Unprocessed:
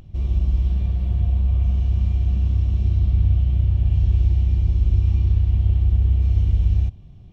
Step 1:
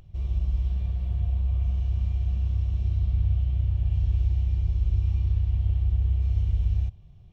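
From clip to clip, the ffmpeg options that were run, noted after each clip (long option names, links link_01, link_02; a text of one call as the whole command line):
ffmpeg -i in.wav -af "equalizer=frequency=260:width=2.2:gain=-12,volume=-6dB" out.wav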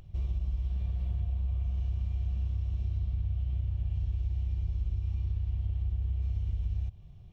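ffmpeg -i in.wav -af "acompressor=threshold=-28dB:ratio=6" out.wav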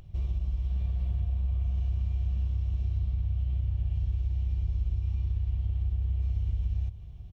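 ffmpeg -i in.wav -af "aecho=1:1:542:0.158,volume=1.5dB" out.wav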